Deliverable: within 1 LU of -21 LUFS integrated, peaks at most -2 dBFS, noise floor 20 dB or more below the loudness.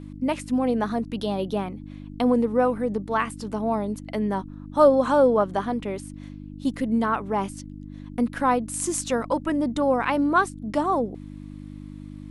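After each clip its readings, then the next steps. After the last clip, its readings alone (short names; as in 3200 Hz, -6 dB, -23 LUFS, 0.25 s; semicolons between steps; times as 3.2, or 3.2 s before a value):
hum 50 Hz; harmonics up to 300 Hz; hum level -36 dBFS; loudness -24.5 LUFS; peak -5.5 dBFS; loudness target -21.0 LUFS
-> de-hum 50 Hz, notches 6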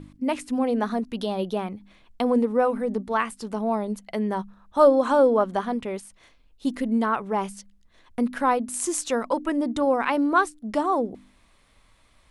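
hum none; loudness -24.5 LUFS; peak -6.0 dBFS; loudness target -21.0 LUFS
-> gain +3.5 dB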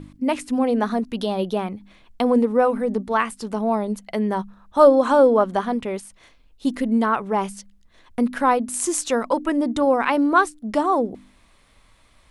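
loudness -21.0 LUFS; peak -2.5 dBFS; noise floor -56 dBFS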